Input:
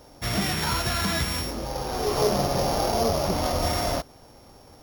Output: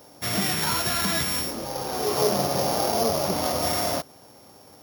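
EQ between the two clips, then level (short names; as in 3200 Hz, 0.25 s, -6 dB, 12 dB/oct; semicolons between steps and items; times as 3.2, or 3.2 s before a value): HPF 130 Hz 12 dB/oct; high shelf 9700 Hz +9 dB; 0.0 dB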